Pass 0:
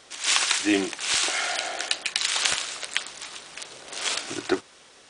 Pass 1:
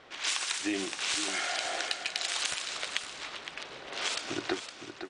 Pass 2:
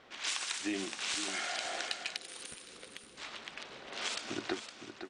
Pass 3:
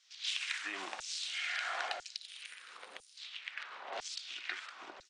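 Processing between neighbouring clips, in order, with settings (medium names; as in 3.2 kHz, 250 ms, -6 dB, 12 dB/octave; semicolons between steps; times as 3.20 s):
level-controlled noise filter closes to 2.4 kHz, open at -20 dBFS; compression, threshold -29 dBFS, peak gain reduction 12.5 dB; delay 513 ms -9.5 dB
time-frequency box 2.17–3.17 s, 540–8600 Hz -12 dB; peaking EQ 220 Hz +7.5 dB 0.33 oct; trim -4.5 dB
LFO high-pass saw down 1 Hz 620–6800 Hz; RIAA curve playback; tape noise reduction on one side only encoder only; trim +1 dB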